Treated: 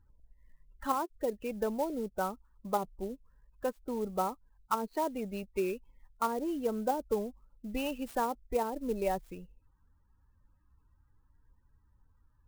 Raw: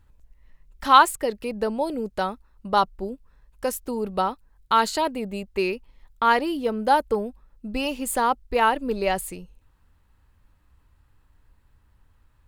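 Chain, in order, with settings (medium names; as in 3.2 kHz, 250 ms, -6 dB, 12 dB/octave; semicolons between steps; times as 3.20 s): loudest bins only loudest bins 32; low-pass that closes with the level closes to 470 Hz, closed at -16 dBFS; sampling jitter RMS 0.028 ms; trim -7 dB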